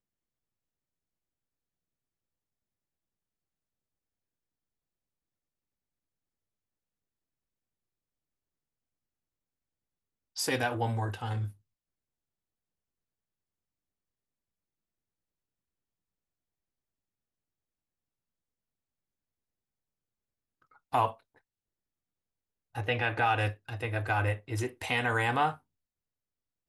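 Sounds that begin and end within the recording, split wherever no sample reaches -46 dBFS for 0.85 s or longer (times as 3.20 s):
10.36–11.51 s
20.93–21.14 s
22.75–25.57 s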